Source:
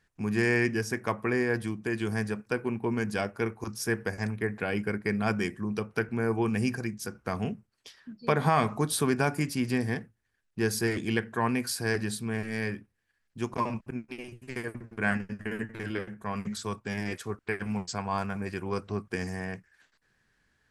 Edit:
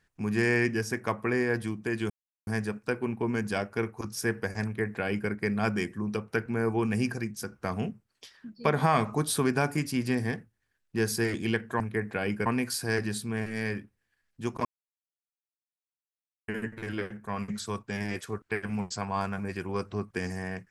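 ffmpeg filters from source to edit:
ffmpeg -i in.wav -filter_complex "[0:a]asplit=6[link_01][link_02][link_03][link_04][link_05][link_06];[link_01]atrim=end=2.1,asetpts=PTS-STARTPTS,afade=type=out:start_time=2.096:duration=0.004:curve=hsin,apad=pad_dur=0.37[link_07];[link_02]atrim=start=2.1:end=11.432,asetpts=PTS-STARTPTS,afade=type=in:duration=0.004:curve=hsin[link_08];[link_03]atrim=start=4.268:end=4.932[link_09];[link_04]atrim=start=11.428:end=13.62,asetpts=PTS-STARTPTS,afade=type=out:start_time=2.188:duration=0.004:curve=hsin[link_10];[link_05]atrim=start=13.62:end=15.45,asetpts=PTS-STARTPTS,volume=0[link_11];[link_06]atrim=start=15.45,asetpts=PTS-STARTPTS,afade=type=in:duration=0.004:curve=hsin[link_12];[link_07][link_08]concat=n=2:v=0:a=1[link_13];[link_13][link_09]acrossfade=duration=0.004:curve1=hsin:curve2=hsin[link_14];[link_10][link_11][link_12]concat=n=3:v=0:a=1[link_15];[link_14][link_15]acrossfade=duration=0.004:curve1=hsin:curve2=hsin" out.wav

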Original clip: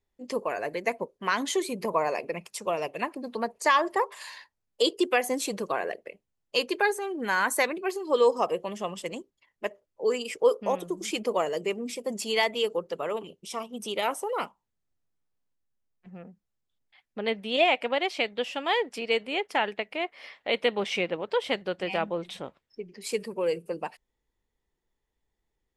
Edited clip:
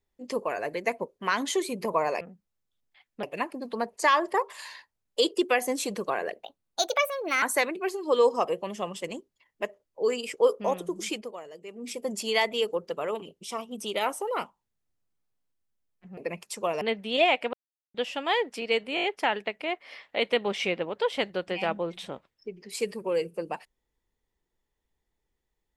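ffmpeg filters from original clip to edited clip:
ffmpeg -i in.wav -filter_complex "[0:a]asplit=15[link_01][link_02][link_03][link_04][link_05][link_06][link_07][link_08][link_09][link_10][link_11][link_12][link_13][link_14][link_15];[link_01]atrim=end=2.212[link_16];[link_02]atrim=start=16.188:end=17.212[link_17];[link_03]atrim=start=2.848:end=6.054[link_18];[link_04]atrim=start=6.05:end=7.44,asetpts=PTS-STARTPTS,asetrate=61740,aresample=44100[link_19];[link_05]atrim=start=7.436:end=11.4,asetpts=PTS-STARTPTS,afade=type=out:start_time=3.674:duration=0.29:curve=qua:silence=0.177828[link_20];[link_06]atrim=start=11.4:end=11.64,asetpts=PTS-STARTPTS,volume=-15dB[link_21];[link_07]atrim=start=11.64:end=16.192,asetpts=PTS-STARTPTS,afade=type=in:duration=0.29:curve=qua:silence=0.177828[link_22];[link_08]atrim=start=2.208:end=2.852[link_23];[link_09]atrim=start=17.208:end=17.93,asetpts=PTS-STARTPTS,afade=type=out:start_time=0.718:duration=0.004:curve=hsin[link_24];[link_10]atrim=start=17.93:end=18.34,asetpts=PTS-STARTPTS,volume=0[link_25];[link_11]atrim=start=18.34:end=19.372,asetpts=PTS-STARTPTS,afade=type=in:duration=0.004:curve=hsin[link_26];[link_12]atrim=start=19.348:end=19.372[link_27];[link_13]atrim=start=19.348:end=19.372[link_28];[link_14]atrim=start=19.348:end=19.372[link_29];[link_15]atrim=start=19.348[link_30];[link_16][link_17]acrossfade=duration=0.004:curve1=hsin:curve2=hsin[link_31];[link_31][link_18]acrossfade=duration=0.004:curve1=hsin:curve2=hsin[link_32];[link_32][link_19]acrossfade=duration=0.004:curve1=hsin:curve2=hsin[link_33];[link_20][link_21][link_22]concat=n=3:v=0:a=1[link_34];[link_33][link_34]acrossfade=duration=0.004:curve1=hsin:curve2=hsin[link_35];[link_35][link_23]acrossfade=duration=0.004:curve1=hsin:curve2=hsin[link_36];[link_24][link_25][link_26]concat=n=3:v=0:a=1[link_37];[link_36][link_37]acrossfade=duration=0.004:curve1=hsin:curve2=hsin[link_38];[link_38][link_27]acrossfade=duration=0.004:curve1=hsin:curve2=hsin[link_39];[link_39][link_28]acrossfade=duration=0.004:curve1=hsin:curve2=hsin[link_40];[link_40][link_29]acrossfade=duration=0.004:curve1=hsin:curve2=hsin[link_41];[link_41][link_30]acrossfade=duration=0.004:curve1=hsin:curve2=hsin" out.wav

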